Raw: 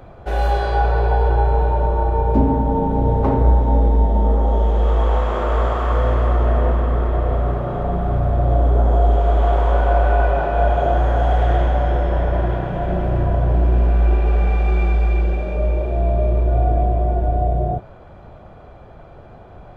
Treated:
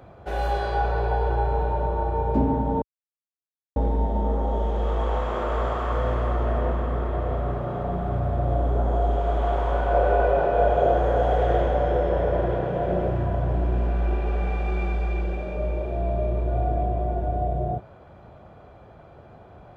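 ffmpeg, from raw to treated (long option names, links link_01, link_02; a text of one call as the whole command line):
ffmpeg -i in.wav -filter_complex "[0:a]asettb=1/sr,asplit=3[link_01][link_02][link_03];[link_01]atrim=end=9.934[link_04];[link_02]atrim=start=9.93:end=13.11,asetpts=PTS-STARTPTS,afade=type=in:duration=0.004:curve=qsin,afade=type=out:start_time=3.176:duration=0.004:curve=qsin,equalizer=frequency=480:width=2.6:gain=11.5[link_05];[link_03]atrim=start=13.106[link_06];[link_04][link_05]acrossfade=duration=0.004:curve1=hsin:curve2=qsin[link_07];[link_07][link_06]acrossfade=duration=0.004:curve1=qsin:curve2=hsin,asplit=3[link_08][link_09][link_10];[link_08]atrim=end=2.82,asetpts=PTS-STARTPTS,afade=type=out:start_time=2.816:duration=0.004:curve=hsin[link_11];[link_09]atrim=start=2.82:end=3.76,asetpts=PTS-STARTPTS,volume=0[link_12];[link_10]atrim=start=3.76,asetpts=PTS-STARTPTS,afade=type=in:duration=0.004:curve=hsin[link_13];[link_11][link_12][link_13]concat=n=3:v=0:a=1,highpass=63,volume=-5dB" out.wav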